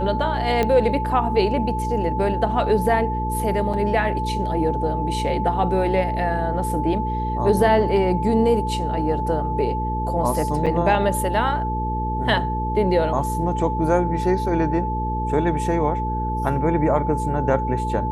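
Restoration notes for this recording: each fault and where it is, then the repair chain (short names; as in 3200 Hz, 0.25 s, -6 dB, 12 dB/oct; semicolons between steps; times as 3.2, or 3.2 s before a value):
hum 60 Hz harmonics 8 -26 dBFS
tone 870 Hz -25 dBFS
0.63 pop -9 dBFS
3.73–3.74 gap 5.8 ms
10.66–10.67 gap 6.5 ms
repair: de-click; de-hum 60 Hz, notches 8; notch 870 Hz, Q 30; interpolate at 3.73, 5.8 ms; interpolate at 10.66, 6.5 ms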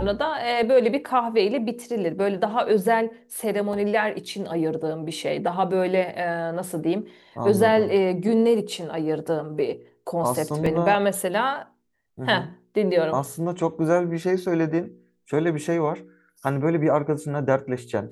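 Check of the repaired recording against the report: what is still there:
none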